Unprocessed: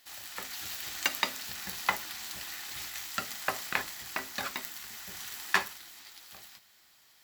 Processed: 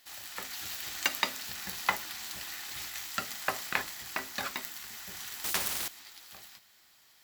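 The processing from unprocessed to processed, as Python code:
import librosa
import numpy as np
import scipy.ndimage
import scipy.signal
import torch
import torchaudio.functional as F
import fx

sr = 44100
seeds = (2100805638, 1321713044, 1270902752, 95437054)

y = fx.spectral_comp(x, sr, ratio=4.0, at=(5.44, 5.88))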